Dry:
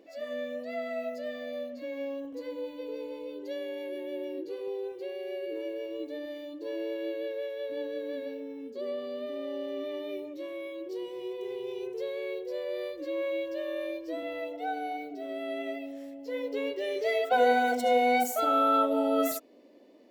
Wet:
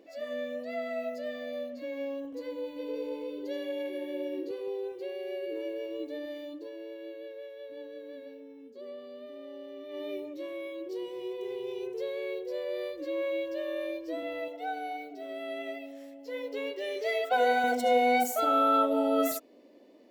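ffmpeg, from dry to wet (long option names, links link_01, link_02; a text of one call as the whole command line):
ffmpeg -i in.wav -filter_complex "[0:a]asettb=1/sr,asplit=3[link_01][link_02][link_03];[link_01]atrim=end=2.684[link_04];[link_02]atrim=start=2.68:end=4.51,asetpts=PTS-STARTPTS,afade=type=in:duration=0.004:curve=qsin,afade=type=out:start_time=1.826:duration=0.004:curve=qsin,aecho=1:1:82:0.562,atrim=end_sample=80703[link_05];[link_03]atrim=start=4.506[link_06];[link_04][link_05]acrossfade=duration=0.004:curve1=hsin:curve2=qsin[link_07];[link_07][link_06]acrossfade=duration=0.004:curve1=qsin:curve2=hsin,asettb=1/sr,asplit=3[link_08][link_09][link_10];[link_08]atrim=end=14.484[link_11];[link_09]atrim=start=14.48:end=17.64,asetpts=PTS-STARTPTS,afade=type=in:duration=0.004:curve=qsin,afade=type=out:start_time=3.156:duration=0.004:curve=qsin,lowshelf=frequency=350:gain=-8.5[link_12];[link_10]atrim=start=17.636[link_13];[link_11][link_12]acrossfade=duration=0.004:curve1=hsin:curve2=qsin[link_14];[link_14][link_13]acrossfade=duration=0.004:curve1=qsin:curve2=hsin,asplit=3[link_15][link_16][link_17];[link_15]atrim=end=6.7,asetpts=PTS-STARTPTS,afade=type=out:start_time=6.56:duration=0.14:silence=0.375837[link_18];[link_16]atrim=start=6.7:end=9.88,asetpts=PTS-STARTPTS,volume=-8.5dB[link_19];[link_17]atrim=start=9.88,asetpts=PTS-STARTPTS,afade=type=in:duration=0.14:silence=0.375837[link_20];[link_18][link_19][link_20]concat=n=3:v=0:a=1" out.wav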